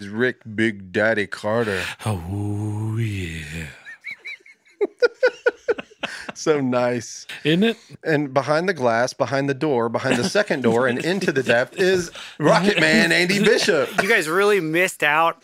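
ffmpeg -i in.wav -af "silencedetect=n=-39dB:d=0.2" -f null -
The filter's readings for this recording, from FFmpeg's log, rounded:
silence_start: 4.51
silence_end: 4.81 | silence_duration: 0.30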